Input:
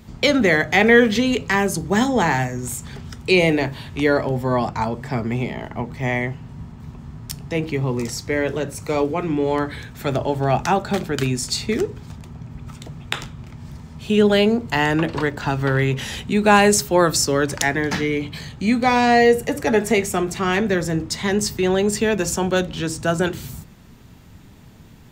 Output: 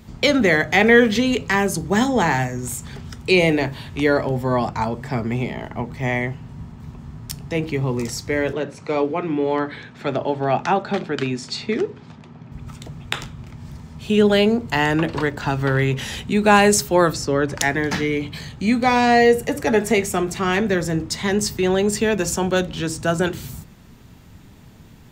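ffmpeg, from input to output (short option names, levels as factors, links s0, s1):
-filter_complex "[0:a]asettb=1/sr,asplit=3[s0][s1][s2];[s0]atrim=end=8.534[s3];[s1]atrim=start=8.53:end=12.52,asetpts=PTS-STARTPTS,afade=t=in:d=0.004:c=qsin,afade=t=out:st=3.986:d=0.004:c=qsin,highpass=170,lowpass=4100[s4];[s2]atrim=start=12.516[s5];[s3][s4]acrossfade=d=0.004:c1=hsin:c2=qsin[s6];[s6][s5]acrossfade=d=0.004:c1=qsin:c2=hsin,asplit=3[s7][s8][s9];[s7]afade=t=out:st=17.12:d=0.02[s10];[s8]aemphasis=mode=reproduction:type=75kf,afade=t=in:st=17.12:d=0.02,afade=t=out:st=17.56:d=0.02[s11];[s9]afade=t=in:st=17.56:d=0.02[s12];[s10][s11][s12]amix=inputs=3:normalize=0"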